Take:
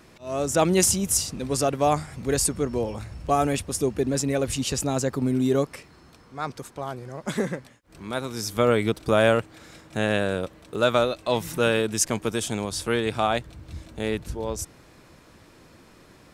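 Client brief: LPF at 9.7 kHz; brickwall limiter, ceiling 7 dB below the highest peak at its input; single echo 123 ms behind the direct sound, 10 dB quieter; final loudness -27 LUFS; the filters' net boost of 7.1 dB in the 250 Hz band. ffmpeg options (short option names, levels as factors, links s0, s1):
-af "lowpass=9700,equalizer=f=250:t=o:g=8.5,alimiter=limit=0.251:level=0:latency=1,aecho=1:1:123:0.316,volume=0.708"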